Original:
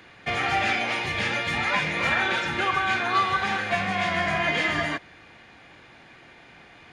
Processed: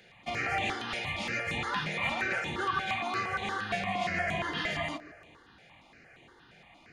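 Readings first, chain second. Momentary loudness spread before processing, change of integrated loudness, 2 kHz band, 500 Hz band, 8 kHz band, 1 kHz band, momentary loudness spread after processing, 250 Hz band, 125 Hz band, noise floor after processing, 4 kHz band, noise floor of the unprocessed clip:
3 LU, -7.5 dB, -8.0 dB, -6.5 dB, -6.5 dB, -7.5 dB, 4 LU, -6.5 dB, -6.0 dB, -59 dBFS, -7.5 dB, -51 dBFS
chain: band-limited delay 0.142 s, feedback 45%, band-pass 600 Hz, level -10.5 dB; step phaser 8.6 Hz 290–5100 Hz; gain -4 dB

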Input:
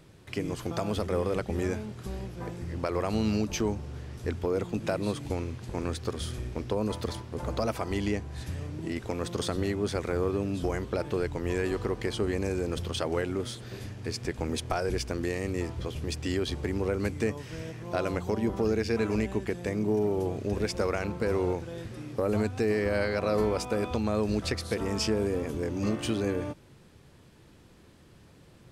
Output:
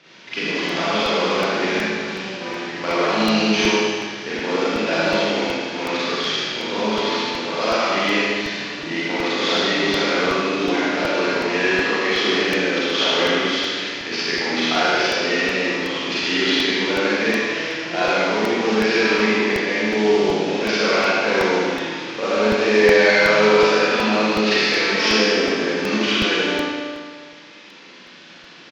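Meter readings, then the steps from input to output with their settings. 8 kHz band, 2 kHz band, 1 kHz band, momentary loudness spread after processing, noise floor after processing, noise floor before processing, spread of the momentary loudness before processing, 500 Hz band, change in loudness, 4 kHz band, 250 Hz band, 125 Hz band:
+9.5 dB, +20.0 dB, +15.0 dB, 9 LU, -43 dBFS, -55 dBFS, 9 LU, +10.5 dB, +12.0 dB, +19.5 dB, +8.5 dB, -2.0 dB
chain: CVSD 32 kbps; HPF 180 Hz 24 dB/oct; bell 2500 Hz +14.5 dB 2.7 oct; on a send: feedback echo 78 ms, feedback 55%, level -5 dB; on the sum: Schroeder reverb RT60 1.6 s, combs from 33 ms, DRR -9 dB; crackling interface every 0.37 s, samples 64, repeat, from 0.69; gain -3 dB

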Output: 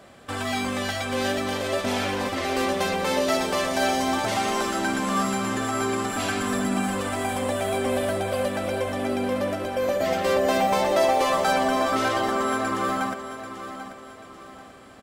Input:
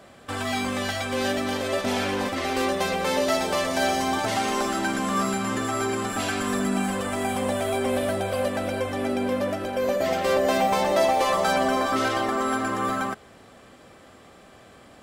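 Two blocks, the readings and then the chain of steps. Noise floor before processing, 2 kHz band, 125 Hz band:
-50 dBFS, +0.5 dB, 0.0 dB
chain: feedback echo 0.788 s, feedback 38%, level -11.5 dB

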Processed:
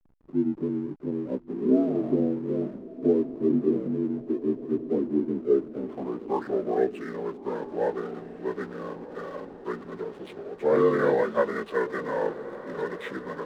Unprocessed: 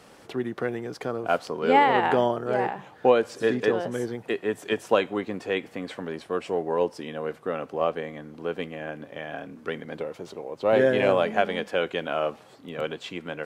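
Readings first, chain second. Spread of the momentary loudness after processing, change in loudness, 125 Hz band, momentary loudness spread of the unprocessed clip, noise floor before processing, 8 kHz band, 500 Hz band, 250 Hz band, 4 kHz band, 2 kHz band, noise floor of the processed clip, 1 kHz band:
13 LU, -1.5 dB, 0.0 dB, 15 LU, -51 dBFS, n/a, -1.5 dB, +5.0 dB, under -15 dB, -7.5 dB, -45 dBFS, -8.5 dB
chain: inharmonic rescaling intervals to 79%; low-pass sweep 280 Hz -> 3800 Hz, 5.13–7.43; backlash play -42 dBFS; diffused feedback echo 1.396 s, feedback 48%, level -14 dB

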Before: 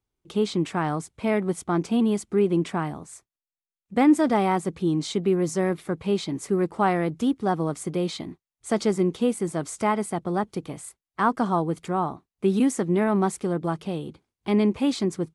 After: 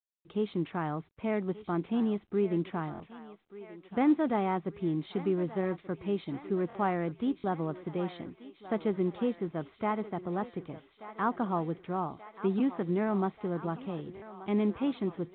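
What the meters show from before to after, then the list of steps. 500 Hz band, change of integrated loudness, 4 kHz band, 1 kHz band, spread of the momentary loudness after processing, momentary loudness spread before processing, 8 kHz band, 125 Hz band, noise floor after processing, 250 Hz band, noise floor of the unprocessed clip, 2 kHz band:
-7.5 dB, -7.5 dB, -13.5 dB, -7.5 dB, 13 LU, 10 LU, under -40 dB, -7.0 dB, -64 dBFS, -7.0 dB, under -85 dBFS, -8.5 dB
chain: bit-crush 11-bit; air absorption 210 m; thinning echo 1.182 s, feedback 75%, high-pass 460 Hz, level -13.5 dB; stuck buffer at 2.93/6.68/7.37/14.15, samples 1024, times 2; gain -7 dB; µ-law 64 kbps 8000 Hz

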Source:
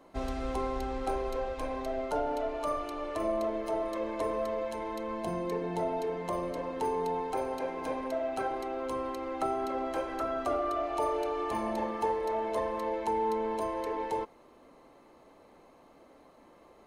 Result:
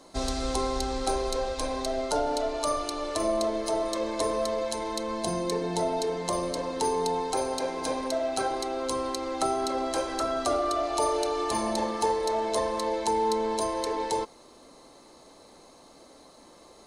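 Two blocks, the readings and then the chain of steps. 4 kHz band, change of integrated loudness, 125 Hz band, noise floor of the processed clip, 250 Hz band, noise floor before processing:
+14.5 dB, +4.5 dB, +4.0 dB, -53 dBFS, +4.0 dB, -58 dBFS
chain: band shelf 6100 Hz +14.5 dB; gain +4 dB

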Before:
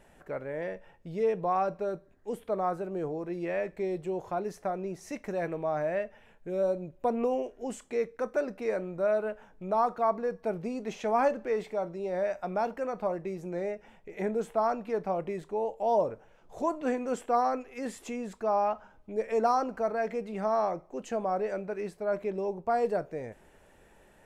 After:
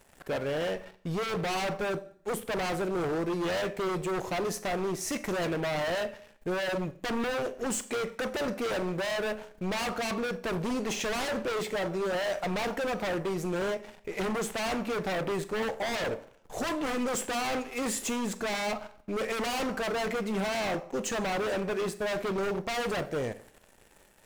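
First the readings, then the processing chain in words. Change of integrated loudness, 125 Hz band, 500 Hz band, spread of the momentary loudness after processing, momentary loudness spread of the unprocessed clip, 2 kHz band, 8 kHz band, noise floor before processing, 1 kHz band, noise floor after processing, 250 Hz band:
0.0 dB, +5.5 dB, -1.5 dB, 4 LU, 11 LU, +8.5 dB, n/a, -59 dBFS, -3.5 dB, -59 dBFS, +3.0 dB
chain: high shelf 4000 Hz +9.5 dB; sample leveller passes 3; in parallel at -4 dB: soft clip -31 dBFS, distortion -7 dB; on the sum: Schroeder reverb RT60 0.54 s, combs from 29 ms, DRR 13 dB; wavefolder -20 dBFS; gain -6 dB

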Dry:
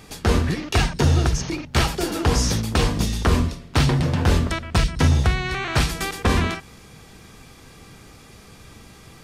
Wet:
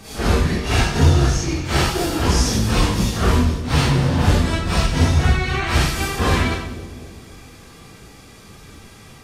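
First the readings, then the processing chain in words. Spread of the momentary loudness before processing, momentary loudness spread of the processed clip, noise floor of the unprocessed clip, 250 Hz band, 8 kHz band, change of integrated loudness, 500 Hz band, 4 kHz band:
5 LU, 5 LU, -46 dBFS, +3.0 dB, +3.0 dB, +3.0 dB, +2.5 dB, +3.0 dB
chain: phase scrambler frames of 0.2 s; split-band echo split 650 Hz, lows 0.254 s, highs 95 ms, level -11 dB; gain +2.5 dB

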